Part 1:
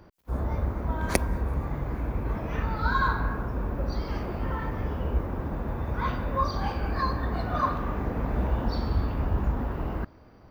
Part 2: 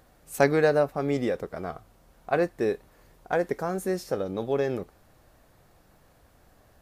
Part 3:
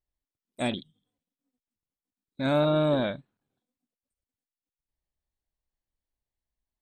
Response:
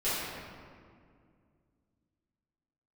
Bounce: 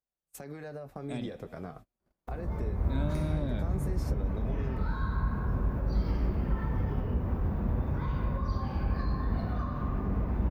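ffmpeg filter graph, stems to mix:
-filter_complex "[0:a]acompressor=threshold=-33dB:ratio=2,adelay=2000,volume=2.5dB,asplit=2[a][b];[b]volume=-18dB[c];[1:a]alimiter=limit=-19dB:level=0:latency=1:release=62,acompressor=threshold=-31dB:ratio=6,volume=-2.5dB,asplit=2[d][e];[2:a]adelay=500,volume=-12dB,asplit=2[f][g];[g]volume=-23dB[h];[e]apad=whole_len=551344[i];[a][i]sidechaincompress=threshold=-47dB:ratio=16:attack=11:release=511[j];[j][d]amix=inputs=2:normalize=0,flanger=delay=4.6:depth=5.1:regen=-50:speed=0.47:shape=triangular,alimiter=level_in=7dB:limit=-24dB:level=0:latency=1:release=454,volume=-7dB,volume=0dB[k];[3:a]atrim=start_sample=2205[l];[c][h]amix=inputs=2:normalize=0[m];[m][l]afir=irnorm=-1:irlink=0[n];[f][k][n]amix=inputs=3:normalize=0,dynaudnorm=f=110:g=13:m=8dB,agate=range=-34dB:threshold=-44dB:ratio=16:detection=peak,acrossover=split=240[o][p];[p]acompressor=threshold=-43dB:ratio=3[q];[o][q]amix=inputs=2:normalize=0"

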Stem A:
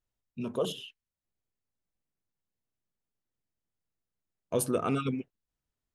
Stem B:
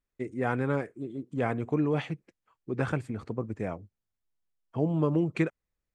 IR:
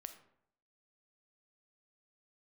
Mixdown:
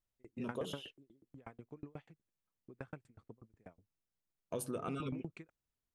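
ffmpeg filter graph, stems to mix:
-filter_complex "[0:a]volume=-4.5dB,asplit=2[a][b];[1:a]aeval=exprs='val(0)*pow(10,-36*if(lt(mod(8.2*n/s,1),2*abs(8.2)/1000),1-mod(8.2*n/s,1)/(2*abs(8.2)/1000),(mod(8.2*n/s,1)-2*abs(8.2)/1000)/(1-2*abs(8.2)/1000))/20)':c=same,volume=-5dB[c];[b]apad=whole_len=262099[d];[c][d]sidechaingate=range=-9dB:threshold=-56dB:ratio=16:detection=peak[e];[a][e]amix=inputs=2:normalize=0,acompressor=threshold=-37dB:ratio=4"

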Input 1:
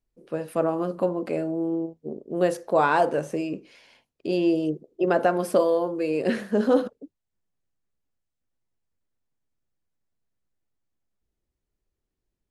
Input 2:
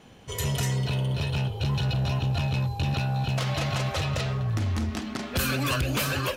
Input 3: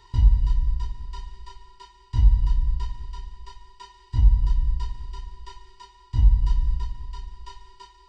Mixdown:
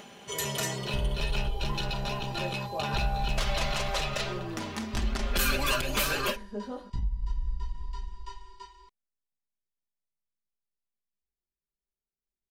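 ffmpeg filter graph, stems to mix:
-filter_complex "[0:a]flanger=delay=18.5:depth=2.1:speed=0.2,volume=-14dB[a];[1:a]highpass=f=420:p=1,acompressor=mode=upward:threshold=-43dB:ratio=2.5,volume=-0.5dB[b];[2:a]adelay=800,volume=-3.5dB[c];[a][c]amix=inputs=2:normalize=0,acompressor=threshold=-28dB:ratio=6,volume=0dB[d];[b][d]amix=inputs=2:normalize=0,aecho=1:1:5:0.54"

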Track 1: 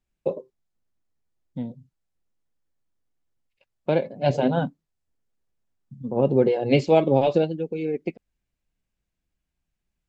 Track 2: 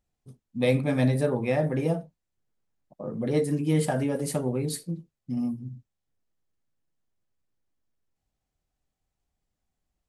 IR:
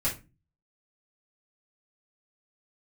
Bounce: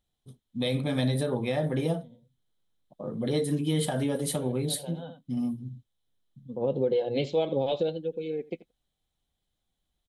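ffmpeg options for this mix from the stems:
-filter_complex "[0:a]equalizer=f=500:t=o:w=0.21:g=8,adelay=450,volume=-8.5dB,asplit=2[a][b];[b]volume=-21dB[c];[1:a]volume=-1dB,asplit=2[d][e];[e]apad=whole_len=464432[f];[a][f]sidechaincompress=threshold=-51dB:ratio=3:attack=16:release=301[g];[c]aecho=0:1:84:1[h];[g][d][h]amix=inputs=3:normalize=0,superequalizer=13b=3.55:16b=1.58,alimiter=limit=-17.5dB:level=0:latency=1:release=92"

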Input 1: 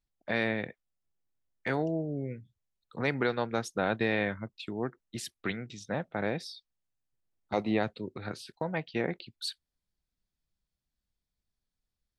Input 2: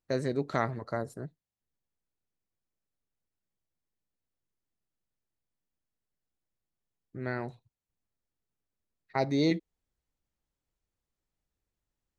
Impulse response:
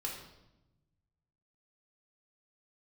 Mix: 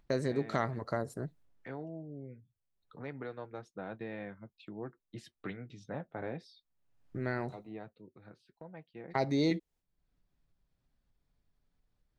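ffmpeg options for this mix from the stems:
-filter_complex "[0:a]lowpass=f=1.3k:p=1,acompressor=mode=upward:threshold=-37dB:ratio=2.5,flanger=delay=5.8:depth=1.7:regen=-51:speed=0.23:shape=triangular,volume=-1dB,afade=t=in:st=4.41:d=0.77:silence=0.473151,afade=t=out:st=7.19:d=0.38:silence=0.281838[a];[1:a]agate=range=-33dB:threshold=-56dB:ratio=3:detection=peak,acontrast=88,volume=-3.5dB[b];[a][b]amix=inputs=2:normalize=0,acompressor=threshold=-37dB:ratio=1.5"

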